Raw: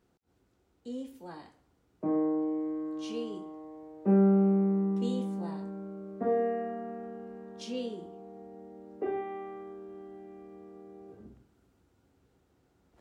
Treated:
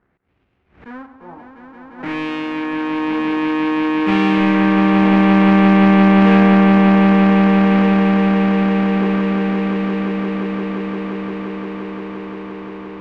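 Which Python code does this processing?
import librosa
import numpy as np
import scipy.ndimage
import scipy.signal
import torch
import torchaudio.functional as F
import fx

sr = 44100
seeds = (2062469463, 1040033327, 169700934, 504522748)

y = fx.halfwave_hold(x, sr)
y = fx.filter_lfo_lowpass(y, sr, shape='sine', hz=0.53, low_hz=890.0, high_hz=2700.0, q=2.5)
y = fx.echo_swell(y, sr, ms=174, loudest=8, wet_db=-6)
y = fx.pre_swell(y, sr, db_per_s=140.0)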